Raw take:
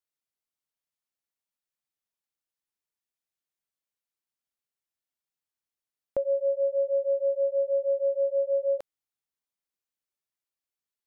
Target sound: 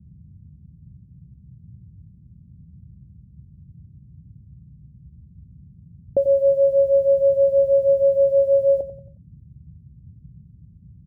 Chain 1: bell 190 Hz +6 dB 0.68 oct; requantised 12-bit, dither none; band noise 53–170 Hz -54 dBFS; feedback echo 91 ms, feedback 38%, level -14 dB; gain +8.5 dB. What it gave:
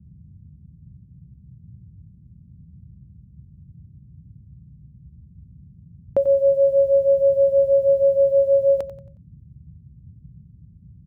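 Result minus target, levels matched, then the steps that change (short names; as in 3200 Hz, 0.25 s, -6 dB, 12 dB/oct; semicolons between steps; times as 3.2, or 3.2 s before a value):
1000 Hz band +3.5 dB
add first: steep low-pass 740 Hz 48 dB/oct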